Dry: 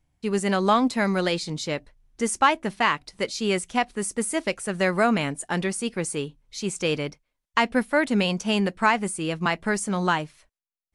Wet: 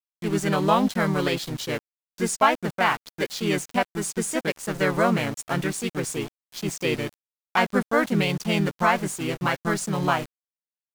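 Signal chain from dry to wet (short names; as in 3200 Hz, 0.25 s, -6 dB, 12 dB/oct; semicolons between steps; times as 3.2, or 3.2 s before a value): sample gate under -33 dBFS; harmoniser -4 st -1 dB; gain -2.5 dB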